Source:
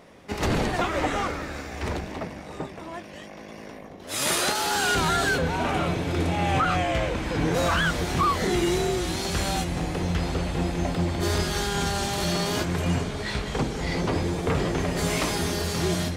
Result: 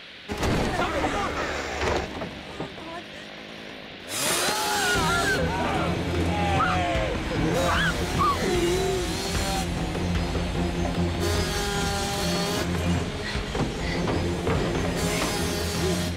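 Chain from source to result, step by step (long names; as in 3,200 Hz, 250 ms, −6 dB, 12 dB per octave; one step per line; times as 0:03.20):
gain on a spectral selection 0:01.36–0:02.06, 340–7,500 Hz +7 dB
noise in a band 1,400–4,000 Hz −44 dBFS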